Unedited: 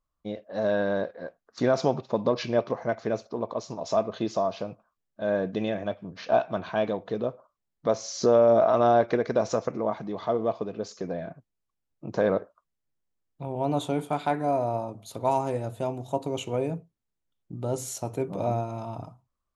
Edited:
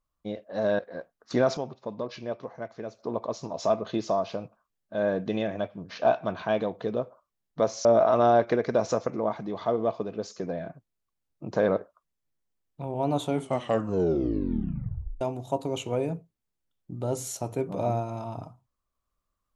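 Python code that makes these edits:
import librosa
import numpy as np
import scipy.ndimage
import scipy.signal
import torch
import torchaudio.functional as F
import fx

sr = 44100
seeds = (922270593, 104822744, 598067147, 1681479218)

y = fx.edit(x, sr, fx.cut(start_s=0.79, length_s=0.27),
    fx.clip_gain(start_s=1.84, length_s=1.43, db=-9.0),
    fx.cut(start_s=8.12, length_s=0.34),
    fx.tape_stop(start_s=13.92, length_s=1.9), tone=tone)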